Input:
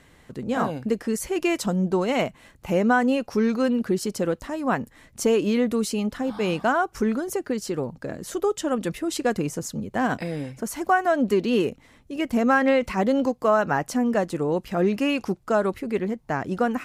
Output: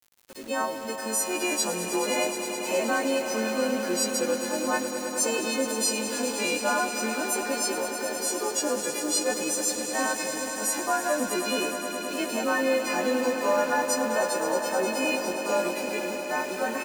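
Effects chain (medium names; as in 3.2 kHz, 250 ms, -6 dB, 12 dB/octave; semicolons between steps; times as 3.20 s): partials quantised in pitch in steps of 3 st; high-pass 360 Hz 12 dB/octave; comb 3.6 ms, depth 49%; in parallel at 0 dB: peak limiter -18 dBFS, peak gain reduction 11 dB; on the sum: bit crusher 6-bit; vibrato 0.43 Hz 69 cents; on a send: echo with a slow build-up 105 ms, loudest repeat 5, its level -12 dB; on the sum: trim -9 dB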